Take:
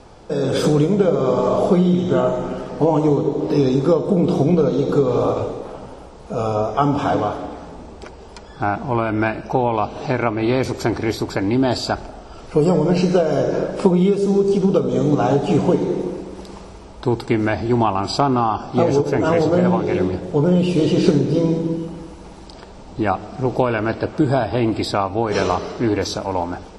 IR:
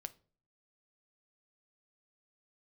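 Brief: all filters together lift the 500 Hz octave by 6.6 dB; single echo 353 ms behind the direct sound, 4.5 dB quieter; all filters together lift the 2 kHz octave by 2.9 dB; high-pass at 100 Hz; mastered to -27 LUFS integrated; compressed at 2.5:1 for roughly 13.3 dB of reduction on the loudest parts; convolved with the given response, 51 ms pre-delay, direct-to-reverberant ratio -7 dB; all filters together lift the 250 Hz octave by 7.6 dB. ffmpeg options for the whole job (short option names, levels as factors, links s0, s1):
-filter_complex "[0:a]highpass=100,equalizer=f=250:t=o:g=9,equalizer=f=500:t=o:g=5,equalizer=f=2000:t=o:g=3.5,acompressor=threshold=0.0562:ratio=2.5,aecho=1:1:353:0.596,asplit=2[s0][s1];[1:a]atrim=start_sample=2205,adelay=51[s2];[s1][s2]afir=irnorm=-1:irlink=0,volume=3.55[s3];[s0][s3]amix=inputs=2:normalize=0,volume=0.251"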